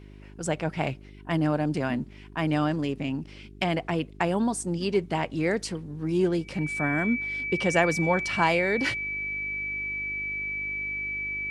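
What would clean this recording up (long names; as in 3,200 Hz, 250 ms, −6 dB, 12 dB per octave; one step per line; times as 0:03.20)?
hum removal 50.4 Hz, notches 8
notch filter 2,300 Hz, Q 30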